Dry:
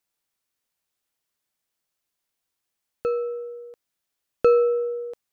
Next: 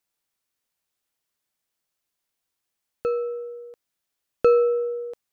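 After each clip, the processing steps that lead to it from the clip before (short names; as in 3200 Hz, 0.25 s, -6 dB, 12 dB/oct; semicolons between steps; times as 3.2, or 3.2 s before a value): nothing audible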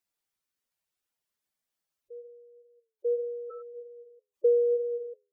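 flange 0.83 Hz, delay 9.9 ms, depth 3.1 ms, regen +81%; reverse echo 0.943 s -16.5 dB; spectral gate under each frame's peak -10 dB strong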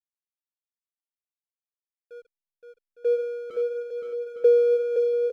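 backlash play -38.5 dBFS; on a send: bouncing-ball echo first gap 0.52 s, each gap 0.65×, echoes 5; on the sum: gain +5.5 dB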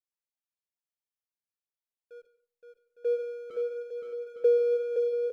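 reverb RT60 0.35 s, pre-delay 0.118 s, DRR 14 dB; gain -5 dB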